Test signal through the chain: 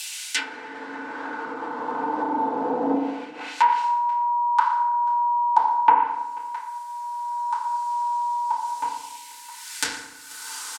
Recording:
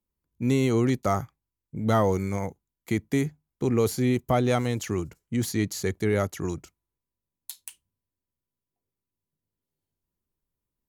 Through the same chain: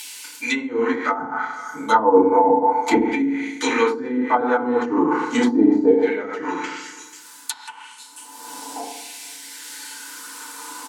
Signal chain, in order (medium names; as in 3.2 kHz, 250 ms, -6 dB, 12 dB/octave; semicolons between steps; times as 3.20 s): ten-band graphic EQ 250 Hz +11 dB, 1 kHz +4 dB, 4 kHz +6 dB, 8 kHz +9 dB; in parallel at +1 dB: upward compressor, threshold -23 dBFS; on the sum: LFO high-pass saw down 0.34 Hz 690–2600 Hz; treble shelf 4.9 kHz +4.5 dB; reverse; compression 8:1, threshold -26 dBFS; reverse; delay 487 ms -23 dB; FDN reverb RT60 0.92 s, low-frequency decay 1.2×, high-frequency decay 0.65×, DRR -9 dB; low-pass that closes with the level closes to 390 Hz, closed at -17 dBFS; small resonant body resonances 270/470/870/1500 Hz, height 11 dB, ringing for 45 ms; trim +5.5 dB